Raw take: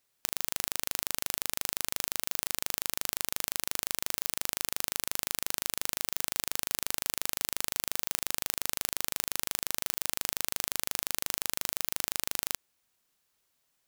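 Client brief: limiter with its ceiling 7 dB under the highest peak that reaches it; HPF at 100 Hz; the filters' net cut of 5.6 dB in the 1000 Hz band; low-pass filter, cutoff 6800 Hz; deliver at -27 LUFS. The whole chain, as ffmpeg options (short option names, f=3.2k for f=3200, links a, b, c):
-af "highpass=100,lowpass=6.8k,equalizer=f=1k:t=o:g=-7.5,volume=17.5dB,alimiter=limit=-1dB:level=0:latency=1"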